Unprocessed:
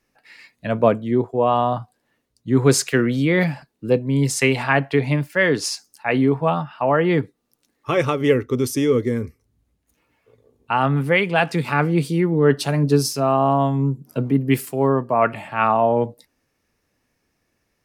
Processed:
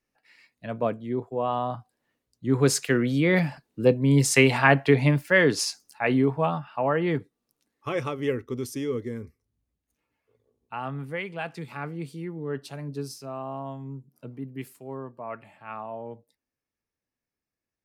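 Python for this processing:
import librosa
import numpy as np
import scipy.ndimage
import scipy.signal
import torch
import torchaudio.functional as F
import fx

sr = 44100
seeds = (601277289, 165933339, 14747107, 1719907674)

y = fx.doppler_pass(x, sr, speed_mps=5, closest_m=6.0, pass_at_s=4.61)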